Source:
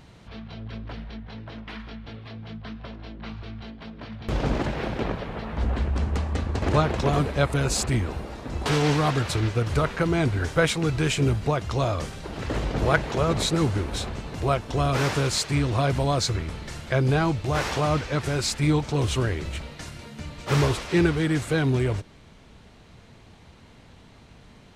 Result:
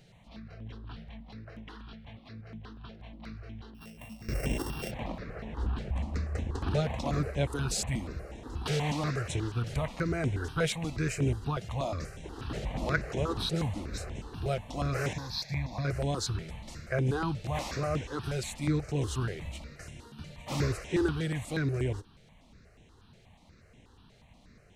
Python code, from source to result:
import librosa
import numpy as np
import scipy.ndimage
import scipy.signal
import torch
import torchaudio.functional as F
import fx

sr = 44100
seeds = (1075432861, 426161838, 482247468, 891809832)

y = fx.sample_sort(x, sr, block=16, at=(3.74, 4.9), fade=0.02)
y = fx.fixed_phaser(y, sr, hz=2000.0, stages=8, at=(15.13, 15.85))
y = fx.phaser_held(y, sr, hz=8.3, low_hz=280.0, high_hz=4600.0)
y = y * librosa.db_to_amplitude(-5.5)